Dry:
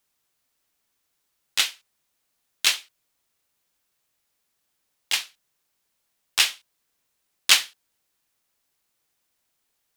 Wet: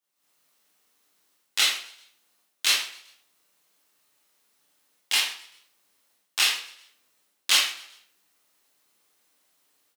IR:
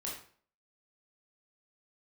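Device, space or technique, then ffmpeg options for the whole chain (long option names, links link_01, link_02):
far laptop microphone: -filter_complex "[1:a]atrim=start_sample=2205[link_01];[0:a][link_01]afir=irnorm=-1:irlink=0,highpass=180,dynaudnorm=framelen=150:gausssize=3:maxgain=14dB,asettb=1/sr,asplit=3[link_02][link_03][link_04];[link_02]atrim=end=1.584[link_05];[link_03]atrim=start=1.58:end=2.66,asetpts=PTS-STARTPTS,afade=type=in:duration=0.004:curve=qsin,afade=type=out:start_time=1.076:duration=0.004:curve=qsin,highpass=frequency=160:width=0.5412,highpass=frequency=160:width=1.3066[link_06];[link_04]atrim=start=2.656[link_07];[link_05][link_06]acrossfade=duration=0.004:curve1=hsin:curve2=qsin[link_08];[link_08][link_07]acrossfade=duration=0.004:curve1=qsin:curve2=hsin,asplit=4[link_09][link_10][link_11][link_12];[link_10]adelay=129,afreqshift=45,volume=-21.5dB[link_13];[link_11]adelay=258,afreqshift=90,volume=-28.4dB[link_14];[link_12]adelay=387,afreqshift=135,volume=-35.4dB[link_15];[link_09][link_13][link_14][link_15]amix=inputs=4:normalize=0,volume=-7dB"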